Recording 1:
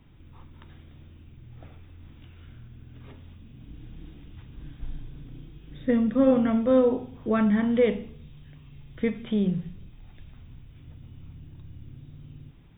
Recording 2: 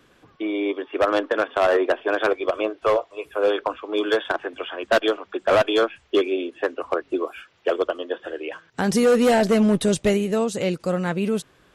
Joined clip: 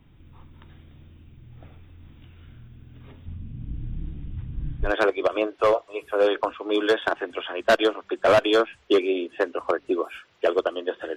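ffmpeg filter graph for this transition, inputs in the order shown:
-filter_complex "[0:a]asettb=1/sr,asplit=3[a][b][c];[a]atrim=end=3.264[d];[b]atrim=start=3.26:end=4.93,asetpts=PTS-STARTPTS,afade=t=in:d=0.004:c=qsin,afade=t=out:st=1.666:d=0.004:c=qsin,bass=f=250:g=12,treble=f=4k:g=-10[e];[c]atrim=start=4.926[f];[d][e]acrossfade=d=0.004:c1=hsin:c2=qsin[g];[g][f]acrossfade=d=0.004:c1=qsin:c2=hsin,apad=whole_dur=11.16,atrim=end=11.16,atrim=end=4.93,asetpts=PTS-STARTPTS[h];[1:a]atrim=start=2.04:end=8.39,asetpts=PTS-STARTPTS[i];[h][i]acrossfade=d=0.12:c1=tri:c2=tri"

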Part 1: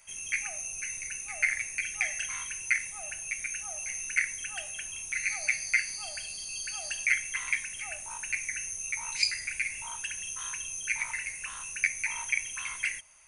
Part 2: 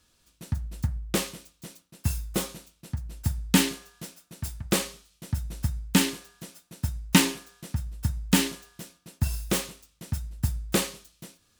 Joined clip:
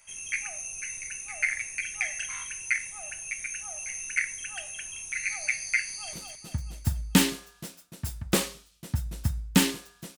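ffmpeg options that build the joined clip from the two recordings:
-filter_complex "[0:a]apad=whole_dur=10.17,atrim=end=10.17,atrim=end=6.132[a];[1:a]atrim=start=2.518:end=6.56[b];[a][b]acrossfade=d=0.004:c1=hsin:c2=hsin,asplit=2[c][d];[d]afade=t=in:st=5.85:d=0.01,afade=t=out:st=6.13:d=0.01,aecho=0:1:220|440|660|880|1100|1320|1540:0.595662|0.327614|0.180188|0.0991033|0.0545068|0.0299787|0.0164883[e];[c][e]amix=inputs=2:normalize=0"

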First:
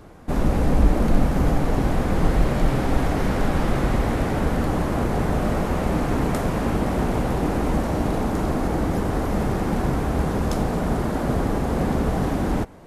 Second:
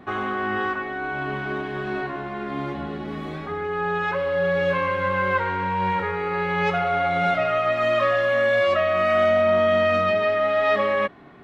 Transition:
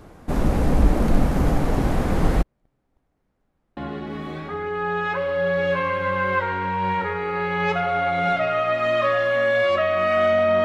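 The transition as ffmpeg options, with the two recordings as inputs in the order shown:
-filter_complex "[0:a]asplit=3[a][b][c];[a]afade=t=out:st=2.41:d=0.02[d];[b]agate=range=-51dB:threshold=-9dB:ratio=16:release=100:detection=peak,afade=t=in:st=2.41:d=0.02,afade=t=out:st=3.77:d=0.02[e];[c]afade=t=in:st=3.77:d=0.02[f];[d][e][f]amix=inputs=3:normalize=0,apad=whole_dur=10.64,atrim=end=10.64,atrim=end=3.772[g];[1:a]atrim=start=2.748:end=9.62[h];[g][h]acrossfade=d=0.004:c1=hsin:c2=hsin"

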